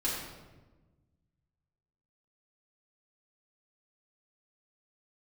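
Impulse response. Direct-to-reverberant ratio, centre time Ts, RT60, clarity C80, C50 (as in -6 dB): -8.0 dB, 67 ms, 1.2 s, 3.5 dB, 1.0 dB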